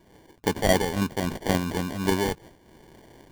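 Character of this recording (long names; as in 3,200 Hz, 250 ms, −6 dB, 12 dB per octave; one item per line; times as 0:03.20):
aliases and images of a low sample rate 1,300 Hz, jitter 0%
amplitude modulation by smooth noise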